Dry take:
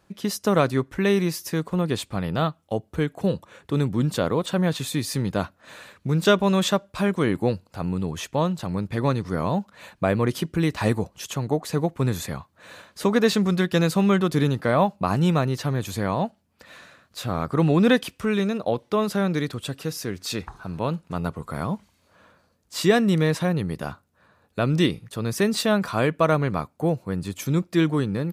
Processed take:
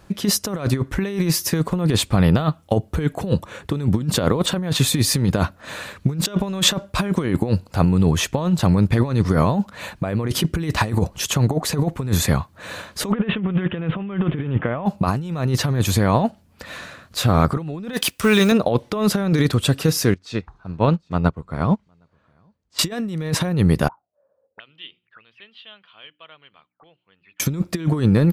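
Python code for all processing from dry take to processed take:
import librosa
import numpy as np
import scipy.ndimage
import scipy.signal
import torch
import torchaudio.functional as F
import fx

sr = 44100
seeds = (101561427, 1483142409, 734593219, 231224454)

y = fx.chain(x, sr, fx.block_float(bits=5),
    fx.steep_lowpass(hz=3300.0, slope=96), at=(13.12, 14.86))
y = fx.chain(y, sr, fx.law_mismatch(coded='A'),
    fx.tilt_eq(slope=2.0), at=(17.93, 18.52))
y = fx.chain(y, sr, fx.air_absorb(metres=92.0),
    fx.echo_single(ms=762, db=-21.0),
    fx.upward_expand(threshold_db=-37.0, expansion=2.5), at=(20.14, 22.79))
y = fx.chain(y, sr, fx.hum_notches(base_hz=60, count=6),
    fx.auto_wah(base_hz=510.0, top_hz=3100.0, q=19.0, full_db=-24.0, direction='up'),
    fx.air_absorb(metres=390.0), at=(23.88, 27.4))
y = fx.low_shelf(y, sr, hz=100.0, db=9.0)
y = fx.over_compress(y, sr, threshold_db=-24.0, ratio=-0.5)
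y = y * 10.0 ** (6.5 / 20.0)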